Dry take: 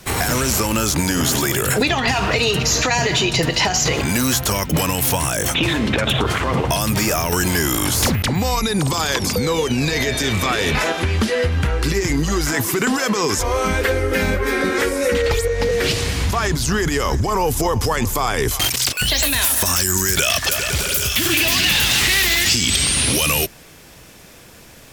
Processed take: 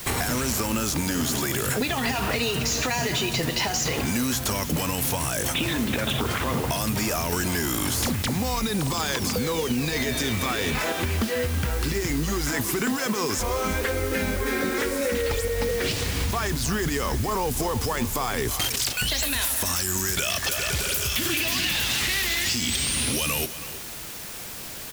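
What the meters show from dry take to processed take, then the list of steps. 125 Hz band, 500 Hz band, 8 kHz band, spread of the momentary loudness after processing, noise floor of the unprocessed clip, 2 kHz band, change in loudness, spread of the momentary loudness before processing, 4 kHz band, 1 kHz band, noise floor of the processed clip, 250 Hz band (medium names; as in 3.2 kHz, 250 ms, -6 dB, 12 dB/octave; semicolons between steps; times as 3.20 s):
-7.5 dB, -7.5 dB, -7.0 dB, 3 LU, -43 dBFS, -7.5 dB, -7.0 dB, 5 LU, -7.5 dB, -7.0 dB, -36 dBFS, -5.5 dB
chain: dynamic bell 240 Hz, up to +6 dB, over -38 dBFS, Q 5.9; compression 4:1, threshold -24 dBFS, peak gain reduction 10.5 dB; added noise white -38 dBFS; on a send: delay 324 ms -14.5 dB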